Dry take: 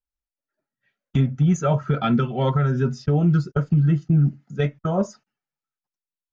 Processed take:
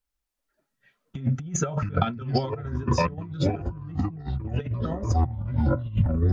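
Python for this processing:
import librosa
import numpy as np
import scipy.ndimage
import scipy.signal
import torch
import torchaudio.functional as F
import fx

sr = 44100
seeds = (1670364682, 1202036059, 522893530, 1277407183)

y = fx.echo_pitch(x, sr, ms=287, semitones=-5, count=3, db_per_echo=-3.0)
y = fx.over_compress(y, sr, threshold_db=-25.0, ratio=-0.5)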